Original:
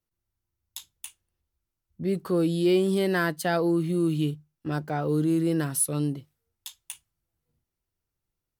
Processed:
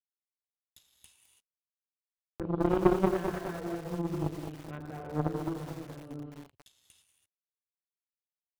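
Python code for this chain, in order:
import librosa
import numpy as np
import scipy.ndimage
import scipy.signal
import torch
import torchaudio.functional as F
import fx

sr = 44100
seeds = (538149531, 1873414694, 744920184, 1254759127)

y = fx.dynamic_eq(x, sr, hz=2900.0, q=1.1, threshold_db=-44.0, ratio=4.0, max_db=3)
y = fx.rotary(y, sr, hz=0.6)
y = fx.rev_gated(y, sr, seeds[0], gate_ms=360, shape='flat', drr_db=-3.0)
y = np.sign(y) * np.maximum(np.abs(y) - 10.0 ** (-48.0 / 20.0), 0.0)
y = fx.env_lowpass_down(y, sr, base_hz=1000.0, full_db=-23.0)
y = fx.cheby_harmonics(y, sr, harmonics=(2, 3, 5, 8), levels_db=(-11, -10, -33, -29), full_scale_db=-8.0)
y = fx.peak_eq(y, sr, hz=87.0, db=9.0, octaves=1.0)
y = fx.buffer_glitch(y, sr, at_s=(1.84,), block=2048, repeats=11)
y = fx.echo_crushed(y, sr, ms=211, feedback_pct=55, bits=7, wet_db=-7.5)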